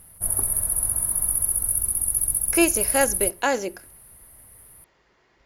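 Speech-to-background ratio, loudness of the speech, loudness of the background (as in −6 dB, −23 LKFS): −3.0 dB, −24.5 LKFS, −21.5 LKFS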